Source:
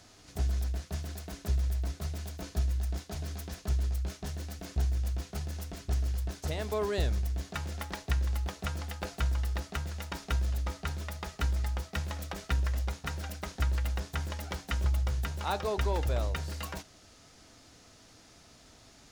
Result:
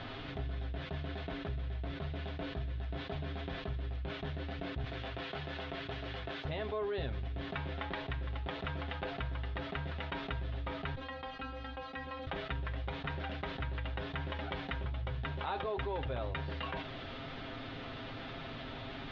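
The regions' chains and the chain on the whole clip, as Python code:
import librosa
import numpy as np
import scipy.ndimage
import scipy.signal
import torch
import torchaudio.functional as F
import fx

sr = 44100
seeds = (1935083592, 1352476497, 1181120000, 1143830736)

y = fx.chain(x, sr, fx.highpass(hz=170.0, slope=6),
    fx.low_shelf(hz=400.0, db=-7.5),
    fx.band_squash(depth_pct=70), at=(4.84, 6.45))
y = fx.chain(y, sr, fx.stiff_resonator(f0_hz=260.0, decay_s=0.23, stiffness=0.002),
    fx.band_squash(depth_pct=40), at=(10.95, 12.27))
y = scipy.signal.sosfilt(scipy.signal.ellip(4, 1.0, 80, 3500.0, 'lowpass', fs=sr, output='sos'), y)
y = y + 0.57 * np.pad(y, (int(7.5 * sr / 1000.0), 0))[:len(y)]
y = fx.env_flatten(y, sr, amount_pct=70)
y = y * 10.0 ** (-7.5 / 20.0)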